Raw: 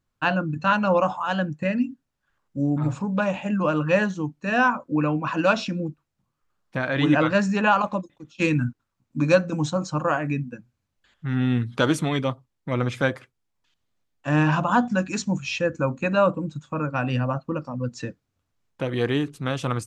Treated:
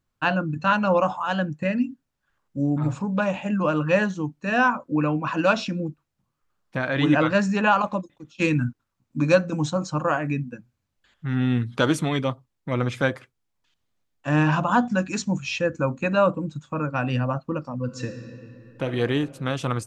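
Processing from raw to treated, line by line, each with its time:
17.76–18.84 reverb throw, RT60 2.9 s, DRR 5 dB

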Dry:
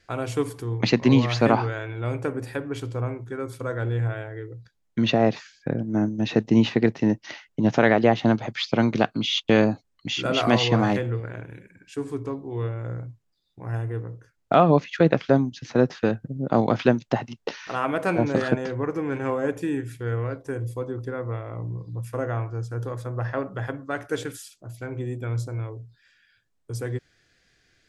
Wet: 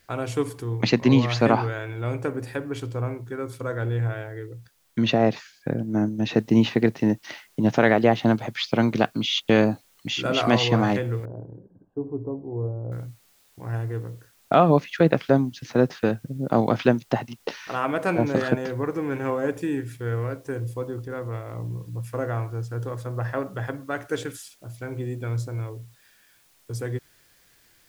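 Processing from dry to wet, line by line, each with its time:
6.37 noise floor step -67 dB -61 dB
11.25–12.92 inverse Chebyshev low-pass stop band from 2100 Hz, stop band 50 dB
20.9–21.55 transient shaper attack -9 dB, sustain -2 dB

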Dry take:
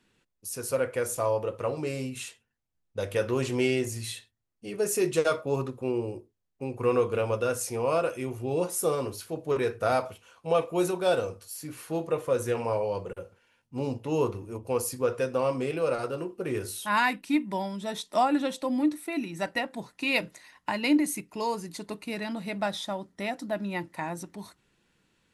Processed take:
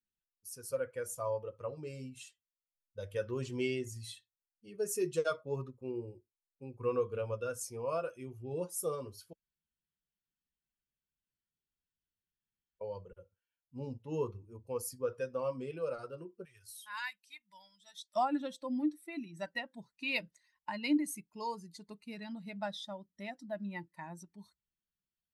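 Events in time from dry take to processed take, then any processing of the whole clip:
9.33–12.81 room tone
16.45–18.16 passive tone stack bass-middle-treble 10-0-10
whole clip: per-bin expansion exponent 1.5; gain -6 dB

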